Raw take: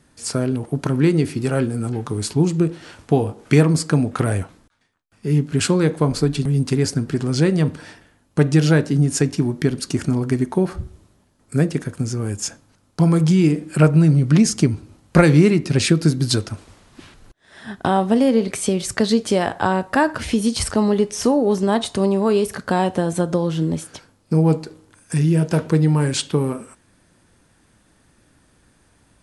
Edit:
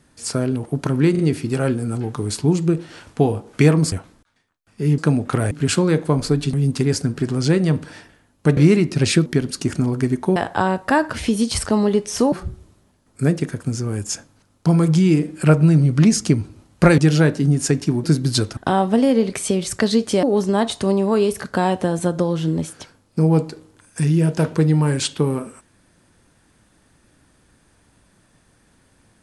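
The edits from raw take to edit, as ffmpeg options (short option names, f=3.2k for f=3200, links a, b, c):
-filter_complex "[0:a]asplit=14[a][b][c][d][e][f][g][h][i][j][k][l][m][n];[a]atrim=end=1.152[o];[b]atrim=start=1.108:end=1.152[p];[c]atrim=start=1.108:end=3.842[q];[d]atrim=start=4.368:end=5.432[r];[e]atrim=start=3.838:end=4.372[s];[f]atrim=start=5.428:end=8.492[t];[g]atrim=start=15.308:end=16.002[u];[h]atrim=start=9.548:end=10.652[v];[i]atrim=start=19.408:end=21.372[w];[j]atrim=start=10.648:end=15.312[x];[k]atrim=start=8.488:end=9.552[y];[l]atrim=start=15.998:end=16.532[z];[m]atrim=start=17.748:end=19.412[aa];[n]atrim=start=21.368[ab];[o][p]acrossfade=d=0.004:c1=hsin:c2=hsin[ac];[ac][q]acrossfade=d=0.004:c1=hsin:c2=hsin[ad];[ad][r]acrossfade=d=0.004:c1=hsin:c2=hsin[ae];[ae][s]acrossfade=d=0.004:c1=hsin:c2=hsin[af];[af][t]acrossfade=d=0.004:c1=hsin:c2=hsin[ag];[ag][u]acrossfade=d=0.004:c1=hsin:c2=hsin[ah];[ah][v]acrossfade=d=0.004:c1=hsin:c2=hsin[ai];[ai][w]acrossfade=d=0.004:c1=hsin:c2=hsin[aj];[aj][x]acrossfade=d=0.004:c1=hsin:c2=hsin[ak];[ak][y]acrossfade=d=0.004:c1=hsin:c2=hsin[al];[al][z]acrossfade=d=0.004:c1=hsin:c2=hsin[am];[am][aa]acrossfade=d=0.004:c1=hsin:c2=hsin[an];[an][ab]acrossfade=d=0.004:c1=hsin:c2=hsin"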